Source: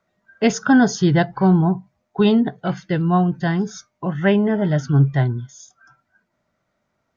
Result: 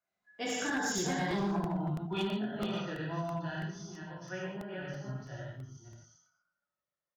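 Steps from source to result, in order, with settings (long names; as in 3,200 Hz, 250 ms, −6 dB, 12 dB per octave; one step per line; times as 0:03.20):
delay that plays each chunk backwards 249 ms, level −1 dB
source passing by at 0:01.58, 23 m/s, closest 2.9 metres
high-shelf EQ 2,200 Hz +5 dB
reverb whose tail is shaped and stops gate 180 ms flat, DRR −4.5 dB
in parallel at −1.5 dB: brickwall limiter −17.5 dBFS, peak gain reduction 16.5 dB
on the sum: downward compressor 5 to 1, threshold −21 dBFS, peak gain reduction 15 dB
low-shelf EQ 340 Hz −7.5 dB
on a send: single-tap delay 117 ms −14.5 dB
on the sum: gain into a clipping stage and back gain 22 dB
hum removal 81.94 Hz, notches 6
regular buffer underruns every 0.33 s, samples 64, repeat, from 0:00.98
level −5 dB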